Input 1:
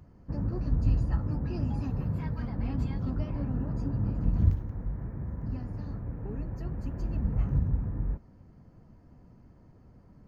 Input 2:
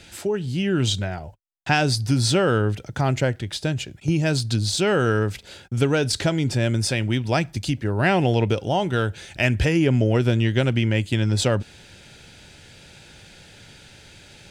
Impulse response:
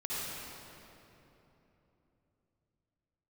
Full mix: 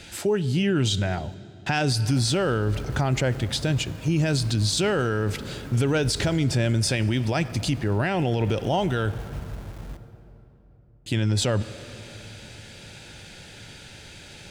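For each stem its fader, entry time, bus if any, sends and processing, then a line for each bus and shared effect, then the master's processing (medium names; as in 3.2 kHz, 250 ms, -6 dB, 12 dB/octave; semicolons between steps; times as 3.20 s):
-9.5 dB, 1.80 s, send -14.5 dB, bit crusher 6-bit
+2.5 dB, 0.00 s, muted 9.14–11.06 s, send -24 dB, none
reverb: on, RT60 3.3 s, pre-delay 50 ms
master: peak limiter -15 dBFS, peak gain reduction 10.5 dB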